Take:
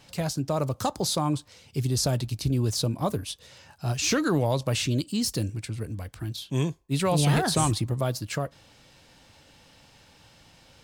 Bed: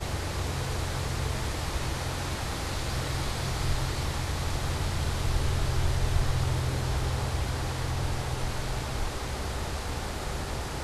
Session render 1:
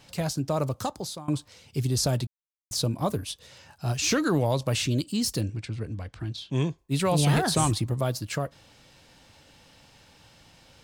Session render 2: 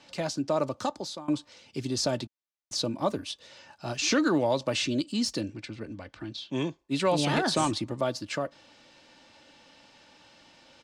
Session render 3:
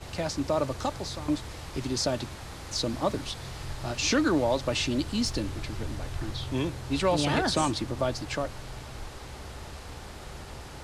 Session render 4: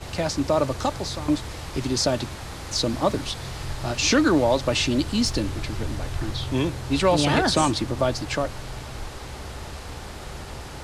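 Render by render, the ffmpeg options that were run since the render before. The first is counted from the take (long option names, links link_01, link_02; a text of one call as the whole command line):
ffmpeg -i in.wav -filter_complex "[0:a]asplit=3[link_01][link_02][link_03];[link_01]afade=type=out:start_time=5.4:duration=0.02[link_04];[link_02]lowpass=5300,afade=type=in:start_time=5.4:duration=0.02,afade=type=out:start_time=6.77:duration=0.02[link_05];[link_03]afade=type=in:start_time=6.77:duration=0.02[link_06];[link_04][link_05][link_06]amix=inputs=3:normalize=0,asplit=4[link_07][link_08][link_09][link_10];[link_07]atrim=end=1.28,asetpts=PTS-STARTPTS,afade=type=out:start_time=0.65:duration=0.63:silence=0.0944061[link_11];[link_08]atrim=start=1.28:end=2.27,asetpts=PTS-STARTPTS,afade=type=in:duration=0.004:curve=hsin:silence=0.0944061,afade=type=out:start_time=0.986:duration=0.004:curve=hsin[link_12];[link_09]atrim=start=2.27:end=2.71,asetpts=PTS-STARTPTS,volume=0[link_13];[link_10]atrim=start=2.71,asetpts=PTS-STARTPTS,afade=type=in:duration=0.004:curve=hsin[link_14];[link_11][link_12][link_13][link_14]concat=n=4:v=0:a=1" out.wav
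ffmpeg -i in.wav -filter_complex "[0:a]acrossover=split=170 7300:gain=0.178 1 0.0708[link_01][link_02][link_03];[link_01][link_02][link_03]amix=inputs=3:normalize=0,aecho=1:1:3.4:0.34" out.wav
ffmpeg -i in.wav -i bed.wav -filter_complex "[1:a]volume=-9dB[link_01];[0:a][link_01]amix=inputs=2:normalize=0" out.wav
ffmpeg -i in.wav -af "volume=5.5dB" out.wav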